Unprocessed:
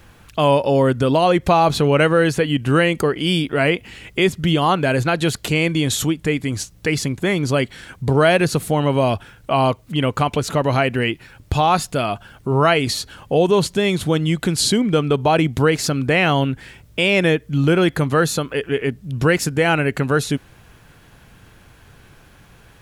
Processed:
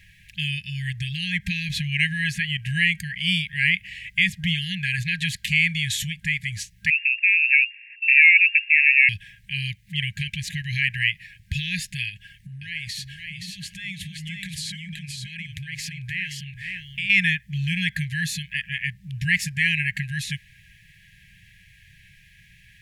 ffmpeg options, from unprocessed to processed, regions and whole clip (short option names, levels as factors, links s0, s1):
-filter_complex "[0:a]asettb=1/sr,asplit=3[s0][s1][s2];[s0]atrim=end=6.904[s3];[s1]atrim=start=6.9:end=9.09,asetpts=PTS-STARTPTS,afade=t=in:d=0.004:c=qsin,afade=t=out:st=2.186:d=0.004:c=qsin,aeval=exprs='if(lt(val(0),0),0.708*val(0),val(0))':c=same,lowpass=f=2400:t=q:w=0.5098,lowpass=f=2400:t=q:w=0.6013,lowpass=f=2400:t=q:w=0.9,lowpass=f=2400:t=q:w=2.563,afreqshift=-2800,highpass=f=1300:p=1[s4];[s2]atrim=start=9.086[s5];[s3][s4]acrossfade=d=0.004:c1=hsin:c2=qsin[s6];[s6][s5]acrossfade=d=0.004:c1=qsin:c2=hsin,asettb=1/sr,asplit=3[s7][s8][s9];[s7]atrim=end=12.094[s10];[s8]atrim=start=12.09:end=17.1,asetpts=PTS-STARTPTS,afade=t=in:d=0.004:c=qsin,afade=t=out:st=5.006:d=0.004:c=qsin,acompressor=threshold=0.0631:ratio=6:attack=3.2:release=140:knee=1:detection=peak,aecho=1:1:523:0.596,atrim=end_sample=220941[s11];[s9]atrim=start=17.096[s12];[s10][s11]acrossfade=d=0.004:c1=hsin:c2=qsin[s13];[s13][s12]acrossfade=d=0.004:c1=qsin:c2=hsin,afftfilt=real='re*(1-between(b*sr/4096,200,1600))':imag='im*(1-between(b*sr/4096,200,1600))':win_size=4096:overlap=0.75,equalizer=f=2200:t=o:w=1.2:g=11,volume=0.447"